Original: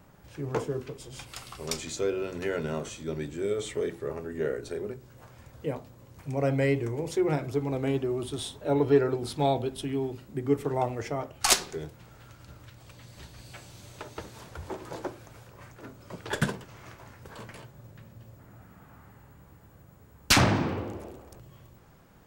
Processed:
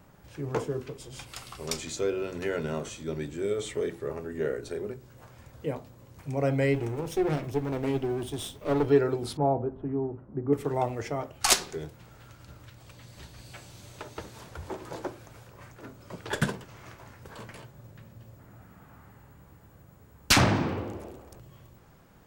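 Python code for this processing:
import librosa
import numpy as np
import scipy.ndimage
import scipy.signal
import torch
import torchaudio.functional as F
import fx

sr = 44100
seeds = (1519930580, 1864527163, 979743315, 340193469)

y = fx.lower_of_two(x, sr, delay_ms=0.35, at=(6.73, 8.86), fade=0.02)
y = fx.lowpass(y, sr, hz=1300.0, slope=24, at=(9.37, 10.53))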